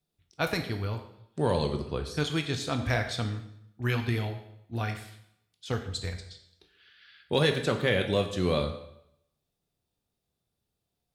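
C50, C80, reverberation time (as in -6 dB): 9.0 dB, 11.0 dB, 0.75 s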